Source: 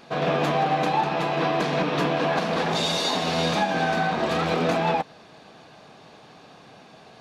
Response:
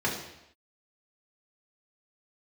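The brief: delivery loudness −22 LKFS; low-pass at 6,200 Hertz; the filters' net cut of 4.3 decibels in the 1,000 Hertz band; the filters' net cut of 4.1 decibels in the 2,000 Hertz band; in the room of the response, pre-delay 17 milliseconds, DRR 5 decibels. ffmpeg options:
-filter_complex "[0:a]lowpass=6200,equalizer=frequency=1000:width_type=o:gain=-5.5,equalizer=frequency=2000:width_type=o:gain=-3.5,asplit=2[link_01][link_02];[1:a]atrim=start_sample=2205,adelay=17[link_03];[link_02][link_03]afir=irnorm=-1:irlink=0,volume=-15.5dB[link_04];[link_01][link_04]amix=inputs=2:normalize=0,volume=2.5dB"

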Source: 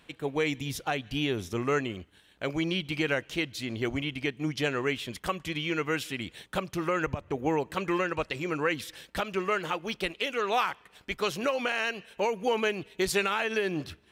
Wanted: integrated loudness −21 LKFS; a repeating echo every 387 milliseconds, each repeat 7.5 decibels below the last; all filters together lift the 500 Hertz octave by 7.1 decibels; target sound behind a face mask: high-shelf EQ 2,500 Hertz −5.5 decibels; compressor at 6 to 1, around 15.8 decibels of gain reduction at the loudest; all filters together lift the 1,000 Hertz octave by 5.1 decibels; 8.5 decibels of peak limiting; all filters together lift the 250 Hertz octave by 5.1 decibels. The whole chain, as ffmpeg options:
ffmpeg -i in.wav -af "equalizer=frequency=250:width_type=o:gain=4,equalizer=frequency=500:width_type=o:gain=6.5,equalizer=frequency=1000:width_type=o:gain=5.5,acompressor=threshold=-34dB:ratio=6,alimiter=level_in=5.5dB:limit=-24dB:level=0:latency=1,volume=-5.5dB,highshelf=frequency=2500:gain=-5.5,aecho=1:1:387|774|1161|1548|1935:0.422|0.177|0.0744|0.0312|0.0131,volume=19dB" out.wav

